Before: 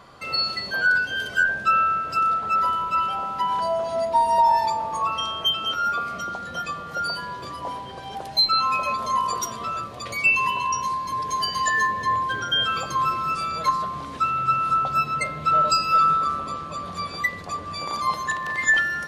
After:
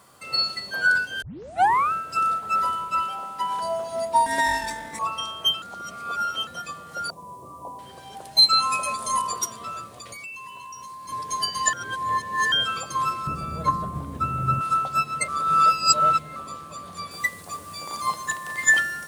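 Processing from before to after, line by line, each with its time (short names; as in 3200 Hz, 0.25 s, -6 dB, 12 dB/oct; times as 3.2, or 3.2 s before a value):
1.22 tape start 0.70 s
3.03–3.63 low shelf 110 Hz -10 dB
4.26–4.99 minimum comb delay 0.36 ms
5.62–6.47 reverse
7.1–7.79 brick-wall FIR low-pass 1200 Hz
8.42–9.22 bell 9100 Hz +13 dB 0.82 oct
9.87–11.09 compressor, threshold -31 dBFS
11.73–12.52 reverse
13.27–14.61 tilt -4.5 dB/oct
15.28–16.36 reverse
17.11 noise floor step -60 dB -48 dB
whole clip: HPF 64 Hz; bell 9000 Hz +12 dB 0.9 oct; upward expander 1.5:1, over -30 dBFS; gain +1.5 dB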